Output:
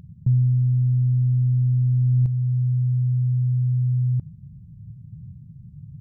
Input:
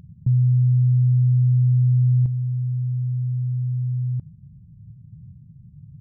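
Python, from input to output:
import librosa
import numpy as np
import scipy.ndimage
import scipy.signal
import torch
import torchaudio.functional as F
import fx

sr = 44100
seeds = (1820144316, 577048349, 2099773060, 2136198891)

y = fx.tracing_dist(x, sr, depth_ms=0.13)
y = fx.rider(y, sr, range_db=3, speed_s=0.5)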